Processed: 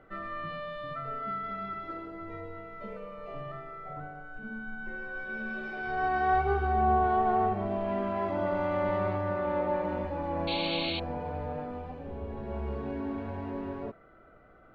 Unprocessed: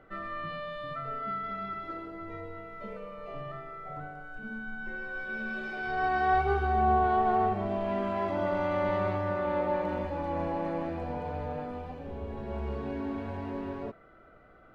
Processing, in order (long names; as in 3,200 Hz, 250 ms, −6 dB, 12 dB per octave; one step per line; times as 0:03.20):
high-shelf EQ 4,000 Hz −4 dB, from 0:03.93 −9.5 dB
0:10.47–0:11.00: sound drawn into the spectrogram noise 2,100–4,500 Hz −35 dBFS